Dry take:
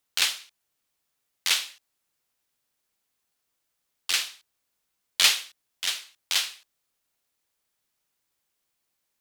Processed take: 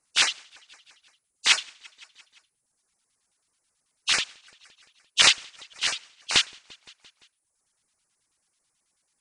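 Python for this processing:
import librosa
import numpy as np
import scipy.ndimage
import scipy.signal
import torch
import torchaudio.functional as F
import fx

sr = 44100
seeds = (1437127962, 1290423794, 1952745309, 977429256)

p1 = fx.freq_compress(x, sr, knee_hz=2500.0, ratio=1.5)
p2 = fx.filter_lfo_notch(p1, sr, shape='square', hz=9.2, low_hz=480.0, high_hz=3300.0, q=0.87)
p3 = p2 + fx.echo_feedback(p2, sr, ms=172, feedback_pct=58, wet_db=-18, dry=0)
p4 = fx.dereverb_blind(p3, sr, rt60_s=0.82)
p5 = fx.highpass(p4, sr, hz=93.0, slope=12, at=(5.9, 6.36))
y = p5 * 10.0 ** (7.5 / 20.0)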